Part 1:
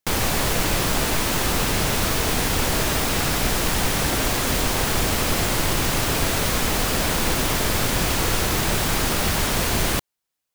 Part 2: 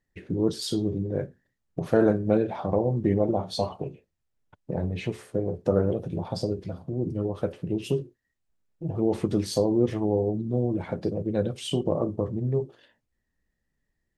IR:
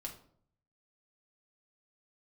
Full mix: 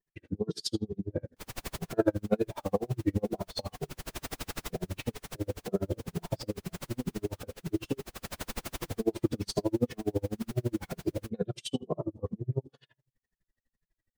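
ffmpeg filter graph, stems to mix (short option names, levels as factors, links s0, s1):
-filter_complex "[0:a]adelay=1300,volume=0.282[s0];[1:a]adynamicequalizer=threshold=0.00355:dfrequency=4900:dqfactor=0.71:tfrequency=4900:tqfactor=0.71:attack=5:release=100:ratio=0.375:range=2:mode=boostabove:tftype=bell,asplit=2[s1][s2];[s2]adelay=2.4,afreqshift=-2.1[s3];[s1][s3]amix=inputs=2:normalize=1,volume=1.33,asplit=3[s4][s5][s6];[s5]volume=0.126[s7];[s6]apad=whole_len=522431[s8];[s0][s8]sidechaincompress=threshold=0.0224:ratio=8:attack=11:release=525[s9];[2:a]atrim=start_sample=2205[s10];[s7][s10]afir=irnorm=-1:irlink=0[s11];[s9][s4][s11]amix=inputs=3:normalize=0,aeval=exprs='val(0)*pow(10,-39*(0.5-0.5*cos(2*PI*12*n/s))/20)':c=same"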